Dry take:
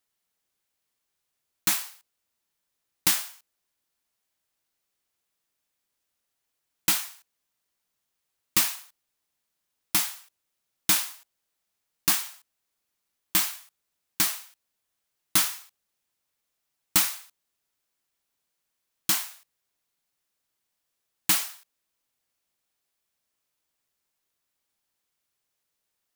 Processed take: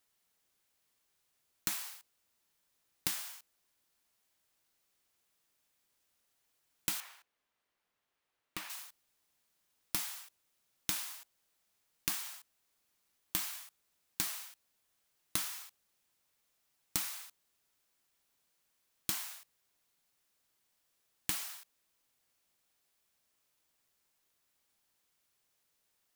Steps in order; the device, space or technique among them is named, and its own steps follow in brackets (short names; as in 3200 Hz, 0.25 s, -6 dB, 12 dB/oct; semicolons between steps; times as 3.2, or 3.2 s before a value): serial compression, peaks first (compressor 5:1, threshold -30 dBFS, peak gain reduction 13 dB; compressor 1.5:1, threshold -42 dBFS, peak gain reduction 6 dB); 7–8.7 tone controls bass -6 dB, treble -13 dB; gain +2.5 dB